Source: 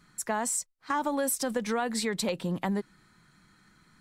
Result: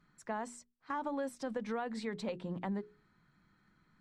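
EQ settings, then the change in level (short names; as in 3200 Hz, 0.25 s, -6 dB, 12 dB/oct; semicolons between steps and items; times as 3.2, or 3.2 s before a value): tape spacing loss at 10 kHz 21 dB; notches 60/120/180/240/300/360/420 Hz; -6.5 dB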